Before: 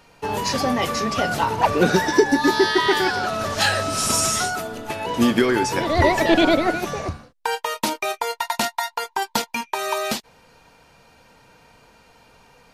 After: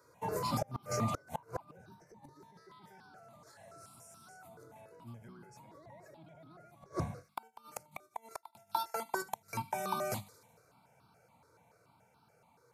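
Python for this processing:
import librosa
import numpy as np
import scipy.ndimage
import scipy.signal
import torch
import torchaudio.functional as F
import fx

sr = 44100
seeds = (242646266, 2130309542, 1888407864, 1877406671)

p1 = fx.octave_divider(x, sr, octaves=1, level_db=2.0)
p2 = fx.doppler_pass(p1, sr, speed_mps=11, closest_m=5.7, pass_at_s=4.84)
p3 = scipy.signal.sosfilt(scipy.signal.butter(4, 110.0, 'highpass', fs=sr, output='sos'), p2)
p4 = fx.hum_notches(p3, sr, base_hz=50, count=5)
p5 = fx.over_compress(p4, sr, threshold_db=-31.0, ratio=-0.5)
p6 = p4 + (p5 * 10.0 ** (2.0 / 20.0))
p7 = fx.notch(p6, sr, hz=1800.0, q=6.7)
p8 = p7 + fx.echo_thinned(p7, sr, ms=74, feedback_pct=66, hz=1100.0, wet_db=-18, dry=0)
p9 = 10.0 ** (-8.0 / 20.0) * np.tanh(p8 / 10.0 ** (-8.0 / 20.0))
p10 = fx.gate_flip(p9, sr, shuts_db=-19.0, range_db=-31)
p11 = fx.peak_eq(p10, sr, hz=2900.0, db=-12.5, octaves=0.7)
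p12 = fx.phaser_held(p11, sr, hz=7.0, low_hz=770.0, high_hz=2000.0)
y = p12 * 10.0 ** (2.0 / 20.0)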